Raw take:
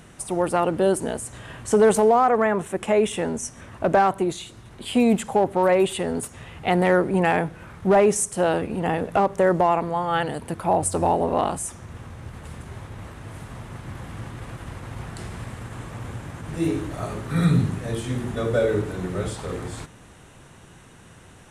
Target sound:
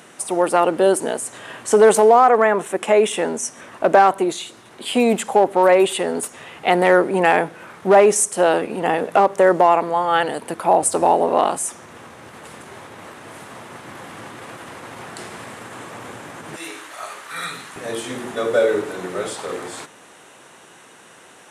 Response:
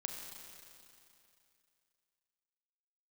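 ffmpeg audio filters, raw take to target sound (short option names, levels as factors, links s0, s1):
-af "asetnsamples=n=441:p=0,asendcmd='16.56 highpass f 1100;17.76 highpass f 380',highpass=320,volume=2"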